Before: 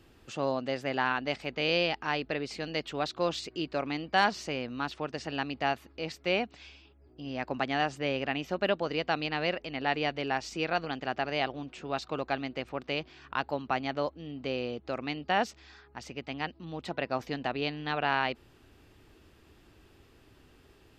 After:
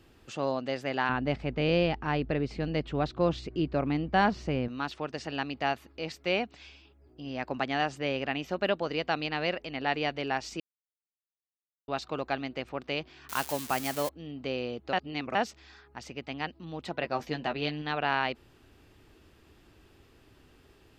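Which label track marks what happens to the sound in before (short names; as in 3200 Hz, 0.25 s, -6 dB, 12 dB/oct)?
1.090000	4.680000	RIAA curve playback
10.600000	11.880000	mute
13.290000	14.090000	switching spikes of -24 dBFS
14.930000	15.350000	reverse
17.000000	17.820000	doubler 13 ms -6 dB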